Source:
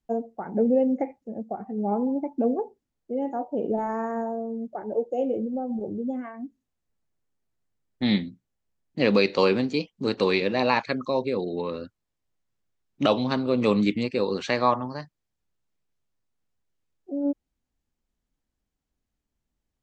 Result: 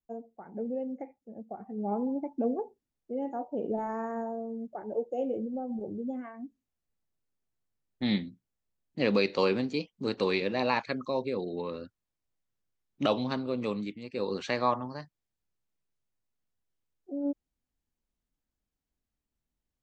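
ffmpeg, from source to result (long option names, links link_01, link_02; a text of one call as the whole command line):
ffmpeg -i in.wav -af "volume=7dB,afade=type=in:start_time=1.15:duration=0.78:silence=0.421697,afade=type=out:start_time=13.22:duration=0.79:silence=0.237137,afade=type=in:start_time=14.01:duration=0.27:silence=0.237137" out.wav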